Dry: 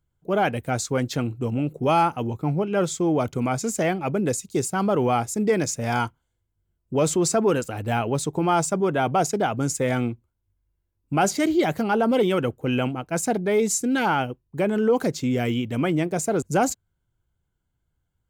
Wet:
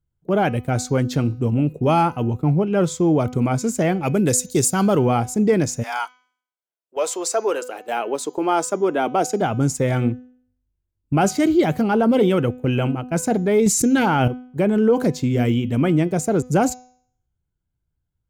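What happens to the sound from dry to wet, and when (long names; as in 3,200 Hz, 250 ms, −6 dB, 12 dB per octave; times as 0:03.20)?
0:04.03–0:04.99: high-shelf EQ 2,700 Hz +11.5 dB
0:05.82–0:09.40: high-pass filter 800 Hz → 220 Hz 24 dB per octave
0:13.66–0:14.28: envelope flattener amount 100%
whole clip: noise gate −35 dBFS, range −9 dB; low-shelf EQ 380 Hz +8 dB; hum removal 250.7 Hz, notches 28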